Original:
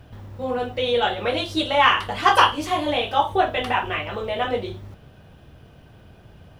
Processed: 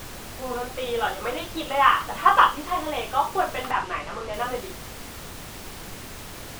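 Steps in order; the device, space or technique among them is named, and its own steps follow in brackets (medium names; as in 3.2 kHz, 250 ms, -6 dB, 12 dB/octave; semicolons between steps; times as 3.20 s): horn gramophone (band-pass 200–3300 Hz; peaking EQ 1.2 kHz +9.5 dB 0.77 oct; wow and flutter; pink noise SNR 12 dB); 3.71–4.34 s: distance through air 60 m; trim -7 dB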